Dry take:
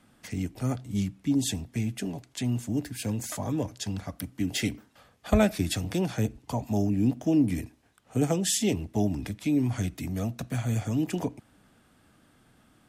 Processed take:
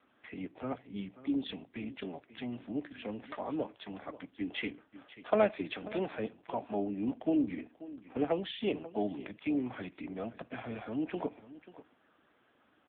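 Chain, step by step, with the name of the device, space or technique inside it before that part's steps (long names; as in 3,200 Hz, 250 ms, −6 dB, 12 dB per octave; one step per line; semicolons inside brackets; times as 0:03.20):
satellite phone (band-pass filter 380–3,200 Hz; single-tap delay 537 ms −16.5 dB; AMR narrowband 6.7 kbit/s 8,000 Hz)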